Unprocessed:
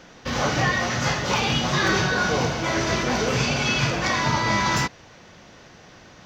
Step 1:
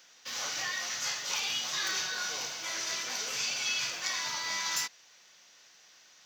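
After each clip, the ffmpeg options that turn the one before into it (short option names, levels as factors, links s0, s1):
-af "aderivative"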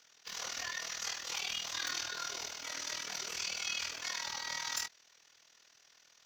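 -af "tremolo=f=40:d=0.788,afreqshift=-52,volume=0.794"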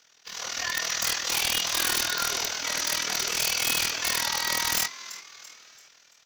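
-filter_complex "[0:a]dynaudnorm=f=110:g=11:m=2.82,asplit=5[s0][s1][s2][s3][s4];[s1]adelay=337,afreqshift=110,volume=0.158[s5];[s2]adelay=674,afreqshift=220,volume=0.0668[s6];[s3]adelay=1011,afreqshift=330,volume=0.0279[s7];[s4]adelay=1348,afreqshift=440,volume=0.0117[s8];[s0][s5][s6][s7][s8]amix=inputs=5:normalize=0,aeval=exprs='(mod(10.6*val(0)+1,2)-1)/10.6':c=same,volume=1.5"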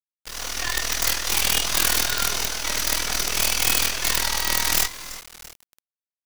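-af "acrusher=bits=4:dc=4:mix=0:aa=0.000001,volume=2.24"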